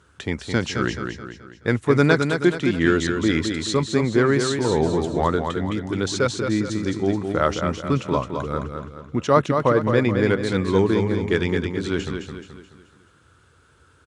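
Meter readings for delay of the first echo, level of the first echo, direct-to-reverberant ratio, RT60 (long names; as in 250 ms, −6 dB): 214 ms, −6.0 dB, no reverb audible, no reverb audible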